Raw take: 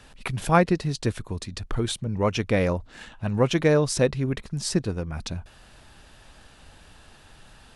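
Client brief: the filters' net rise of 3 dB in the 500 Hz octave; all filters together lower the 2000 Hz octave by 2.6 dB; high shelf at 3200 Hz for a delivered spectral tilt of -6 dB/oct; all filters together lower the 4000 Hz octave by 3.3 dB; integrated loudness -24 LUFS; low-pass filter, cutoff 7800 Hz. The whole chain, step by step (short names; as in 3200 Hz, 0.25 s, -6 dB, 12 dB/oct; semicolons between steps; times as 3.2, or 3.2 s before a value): LPF 7800 Hz; bell 500 Hz +3.5 dB; bell 2000 Hz -3.5 dB; high shelf 3200 Hz +6.5 dB; bell 4000 Hz -8.5 dB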